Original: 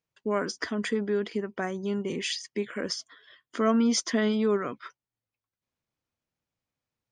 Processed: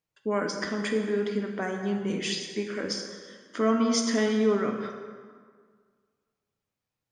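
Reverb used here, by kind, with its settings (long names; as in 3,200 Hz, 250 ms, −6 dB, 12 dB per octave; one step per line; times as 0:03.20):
dense smooth reverb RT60 1.8 s, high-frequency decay 0.65×, DRR 2.5 dB
level −1 dB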